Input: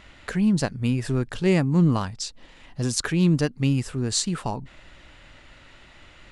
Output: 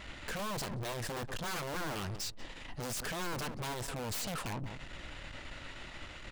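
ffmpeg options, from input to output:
-filter_complex "[0:a]aeval=exprs='(mod(10.6*val(0)+1,2)-1)/10.6':c=same,asplit=2[s0][s1];[s1]adelay=181,lowpass=f=920:p=1,volume=0.126,asplit=2[s2][s3];[s3]adelay=181,lowpass=f=920:p=1,volume=0.16[s4];[s0][s2][s4]amix=inputs=3:normalize=0,aeval=exprs='(tanh(126*val(0)+0.45)-tanh(0.45))/126':c=same,volume=1.78"

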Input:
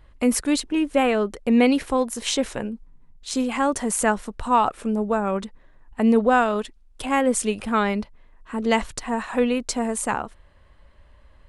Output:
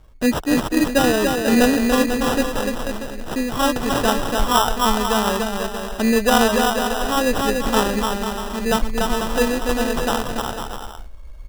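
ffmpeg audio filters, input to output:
-af "asubboost=boost=5:cutoff=67,aecho=1:1:290|493|635.1|734.6|804.2:0.631|0.398|0.251|0.158|0.1,acrusher=samples=20:mix=1:aa=0.000001,volume=1.26"

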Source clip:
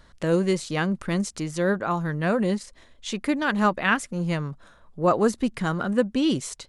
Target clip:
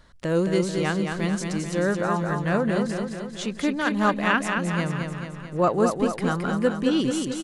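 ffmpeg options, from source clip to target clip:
-af "atempo=0.9,aecho=1:1:219|438|657|876|1095|1314|1533|1752:0.562|0.321|0.183|0.104|0.0594|0.0338|0.0193|0.011,volume=0.891"

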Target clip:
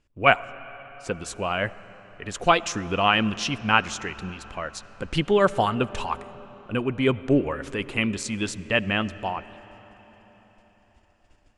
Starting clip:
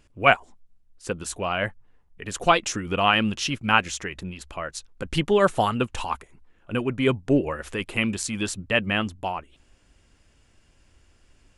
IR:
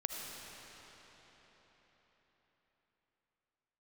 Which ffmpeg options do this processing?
-filter_complex "[0:a]lowpass=7900,agate=range=0.316:threshold=0.00178:ratio=16:detection=peak,asplit=2[s0][s1];[s1]highshelf=f=5500:g=-10.5[s2];[1:a]atrim=start_sample=2205[s3];[s2][s3]afir=irnorm=-1:irlink=0,volume=0.2[s4];[s0][s4]amix=inputs=2:normalize=0,volume=0.841"

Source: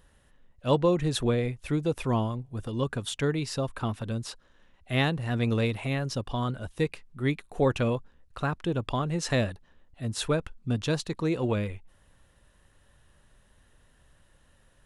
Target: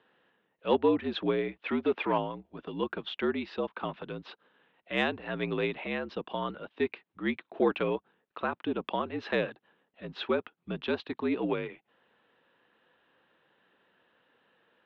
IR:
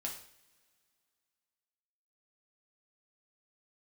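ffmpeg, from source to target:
-filter_complex "[0:a]asettb=1/sr,asplit=3[s0][s1][s2];[s0]atrim=end=1.624[s3];[s1]atrim=start=1.62:end=2.18,asetpts=PTS-STARTPTS,afade=t=in:d=0.004:c=qsin,afade=t=out:st=0.556:d=0.004:c=qsin,asplit=2[s4][s5];[s5]highpass=f=720:p=1,volume=5.01,asoftclip=type=tanh:threshold=0.168[s6];[s4][s6]amix=inputs=2:normalize=0,lowpass=f=2800:p=1,volume=0.501[s7];[s2]atrim=start=2.176[s8];[s3][s7]acrossfade=d=0.004:c1=hsin:c2=qsin[s9];[s9][s8]acrossfade=d=0.004:c1=qsin:c2=hsin,highpass=f=280:t=q:w=0.5412,highpass=f=280:t=q:w=1.307,lowpass=f=3600:t=q:w=0.5176,lowpass=f=3600:t=q:w=0.7071,lowpass=f=3600:t=q:w=1.932,afreqshift=-60,acontrast=89,volume=0.422"

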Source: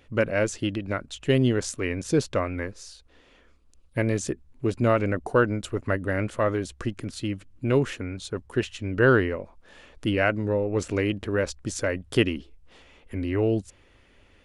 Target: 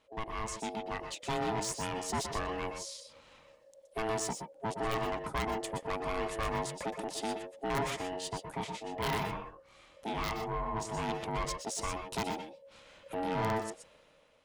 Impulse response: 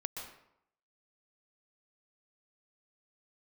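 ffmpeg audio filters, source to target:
-filter_complex "[0:a]highshelf=f=4200:g=7,dynaudnorm=f=130:g=11:m=4.22,aeval=exprs='val(0)*sin(2*PI*550*n/s)':c=same,aeval=exprs='(mod(1.5*val(0)+1,2)-1)/1.5':c=same,asplit=3[s0][s1][s2];[s0]afade=t=out:st=8.56:d=0.02[s3];[s1]flanger=delay=22.5:depth=5.4:speed=1.8,afade=t=in:st=8.56:d=0.02,afade=t=out:st=11.02:d=0.02[s4];[s2]afade=t=in:st=11.02:d=0.02[s5];[s3][s4][s5]amix=inputs=3:normalize=0,asoftclip=type=tanh:threshold=0.119[s6];[1:a]atrim=start_sample=2205,afade=t=out:st=0.18:d=0.01,atrim=end_sample=8379[s7];[s6][s7]afir=irnorm=-1:irlink=0,volume=0.398"

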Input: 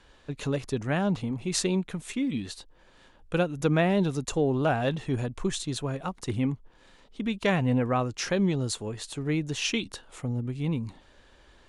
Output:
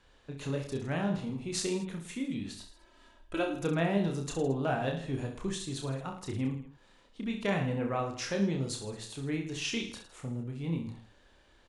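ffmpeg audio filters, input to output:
-filter_complex "[0:a]asettb=1/sr,asplit=3[s0][s1][s2];[s0]atrim=end=2.564[s3];[s1]atrim=start=2.56:end=3.57,asetpts=PTS-STARTPTS,afade=t=in:d=0.004:c=qsin,afade=t=out:st=1.006:d=0.004:c=qsin,aecho=1:1:3.1:0.9,atrim=end_sample=44541[s4];[s2]atrim=start=3.566[s5];[s3][s4]acrossfade=d=0.004:c1=hsin:c2=qsin[s6];[s6][s5]acrossfade=d=0.004:c1=qsin:c2=hsin,aecho=1:1:30|66|109.2|161|223.2:0.631|0.398|0.251|0.158|0.1,volume=0.422"

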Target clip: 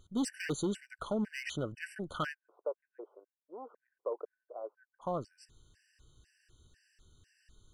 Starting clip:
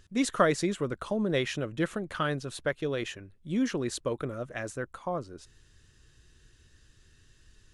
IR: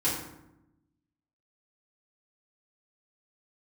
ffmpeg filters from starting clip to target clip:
-filter_complex "[0:a]asoftclip=type=hard:threshold=0.0596,asplit=3[s0][s1][s2];[s0]afade=t=out:st=2.33:d=0.02[s3];[s1]asuperpass=centerf=670:order=8:qfactor=0.96,afade=t=in:st=2.33:d=0.02,afade=t=out:st=5.01:d=0.02[s4];[s2]afade=t=in:st=5.01:d=0.02[s5];[s3][s4][s5]amix=inputs=3:normalize=0,afftfilt=real='re*gt(sin(2*PI*2*pts/sr)*(1-2*mod(floor(b*sr/1024/1500),2)),0)':imag='im*gt(sin(2*PI*2*pts/sr)*(1-2*mod(floor(b*sr/1024/1500),2)),0)':win_size=1024:overlap=0.75,volume=0.75"

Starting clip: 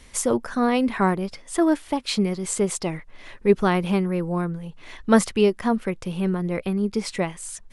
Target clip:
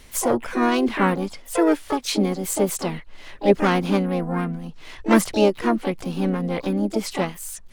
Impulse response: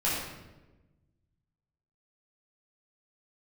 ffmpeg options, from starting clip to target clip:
-filter_complex "[0:a]asplit=4[s0][s1][s2][s3];[s1]asetrate=58866,aresample=44100,atempo=0.749154,volume=0.251[s4];[s2]asetrate=66075,aresample=44100,atempo=0.66742,volume=0.447[s5];[s3]asetrate=88200,aresample=44100,atempo=0.5,volume=0.224[s6];[s0][s4][s5][s6]amix=inputs=4:normalize=0"

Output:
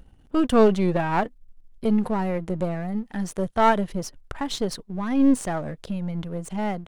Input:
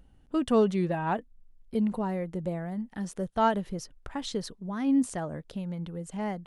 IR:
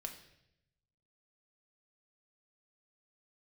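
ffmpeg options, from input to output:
-af "aeval=exprs='if(lt(val(0),0),0.447*val(0),val(0))':c=same,atempo=0.94,volume=2.66"

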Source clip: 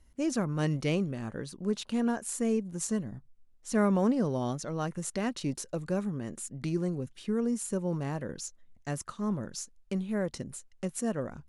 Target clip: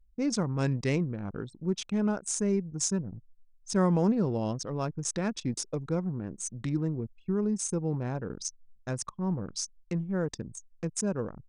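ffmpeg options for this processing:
-af "asetrate=39289,aresample=44100,atempo=1.12246,anlmdn=0.631,aexciter=amount=2:drive=2.8:freq=5400,volume=1.12"

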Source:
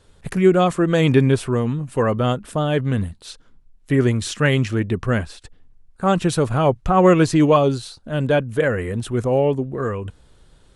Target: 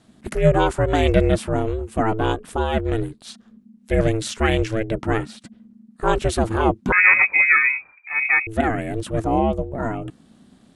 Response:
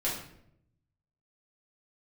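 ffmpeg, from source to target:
-filter_complex "[0:a]aeval=exprs='val(0)*sin(2*PI*220*n/s)':c=same,asettb=1/sr,asplit=3[s0][s1][s2];[s0]atrim=end=6.924[s3];[s1]atrim=start=6.92:end=8.47,asetpts=PTS-STARTPTS,afade=t=in:d=0.004:c=qsin,afade=t=out:st=1.546:d=0.004:c=qsin,lowpass=f=2200:t=q:w=0.5098,lowpass=f=2200:t=q:w=0.6013,lowpass=f=2200:t=q:w=0.9,lowpass=f=2200:t=q:w=2.563,afreqshift=-2600[s4];[s2]atrim=start=8.466[s5];[s3][s4]acrossfade=d=0.004:c1=hsin:c2=qsin[s6];[s6][s5]acrossfade=d=0.004:c1=qsin:c2=hsin,volume=1.19"

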